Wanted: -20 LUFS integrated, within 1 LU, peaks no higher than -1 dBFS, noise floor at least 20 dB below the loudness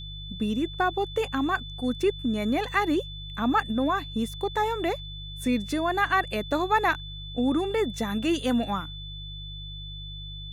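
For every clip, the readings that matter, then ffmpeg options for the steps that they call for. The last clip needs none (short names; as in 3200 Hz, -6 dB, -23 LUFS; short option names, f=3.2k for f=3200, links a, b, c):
hum 50 Hz; harmonics up to 150 Hz; hum level -37 dBFS; steady tone 3500 Hz; tone level -40 dBFS; loudness -27.0 LUFS; peak -10.5 dBFS; loudness target -20.0 LUFS
-> -af "bandreject=f=50:t=h:w=4,bandreject=f=100:t=h:w=4,bandreject=f=150:t=h:w=4"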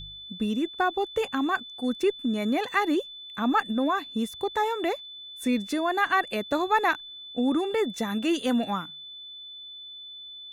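hum none; steady tone 3500 Hz; tone level -40 dBFS
-> -af "bandreject=f=3.5k:w=30"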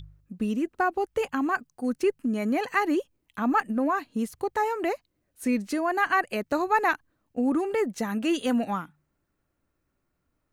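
steady tone none; loudness -27.5 LUFS; peak -11.0 dBFS; loudness target -20.0 LUFS
-> -af "volume=7.5dB"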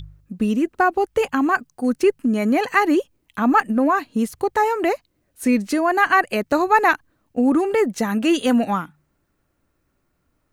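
loudness -20.0 LUFS; peak -3.5 dBFS; noise floor -70 dBFS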